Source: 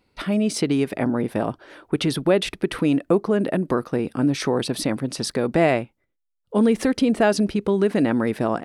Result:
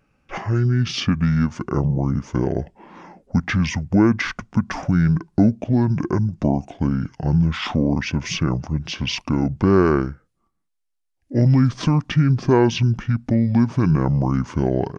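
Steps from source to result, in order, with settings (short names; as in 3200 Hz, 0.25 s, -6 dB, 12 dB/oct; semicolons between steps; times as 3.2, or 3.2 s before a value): speed mistake 78 rpm record played at 45 rpm; gain +2 dB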